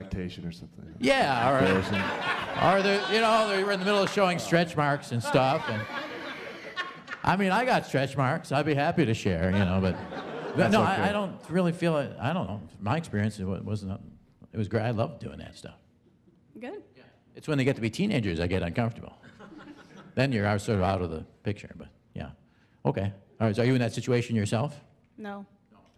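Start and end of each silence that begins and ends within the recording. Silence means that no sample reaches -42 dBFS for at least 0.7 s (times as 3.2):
15.7–16.56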